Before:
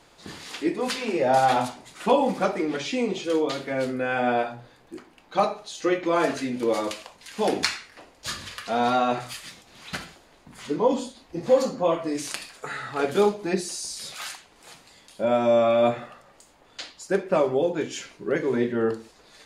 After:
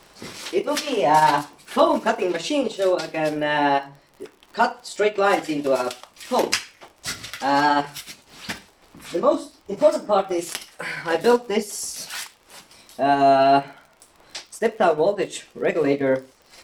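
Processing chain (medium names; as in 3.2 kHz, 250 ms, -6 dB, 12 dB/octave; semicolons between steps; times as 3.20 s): tape speed +17%; transient shaper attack -2 dB, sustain -7 dB; crackle 50 per s -43 dBFS; trim +4.5 dB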